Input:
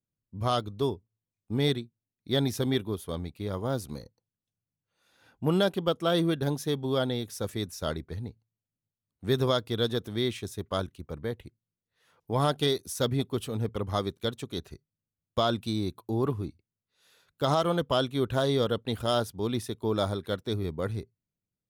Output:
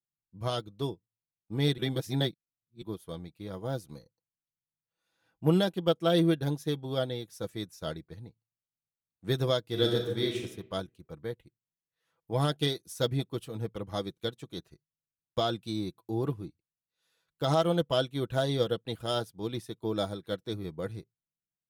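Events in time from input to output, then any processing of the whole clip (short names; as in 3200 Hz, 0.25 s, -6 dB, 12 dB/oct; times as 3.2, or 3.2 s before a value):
1.78–2.82 reverse
9.66–10.44 reverb throw, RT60 1 s, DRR -0.5 dB
whole clip: comb 6.1 ms, depth 44%; dynamic EQ 1100 Hz, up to -6 dB, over -44 dBFS, Q 2.6; upward expander 1.5:1, over -46 dBFS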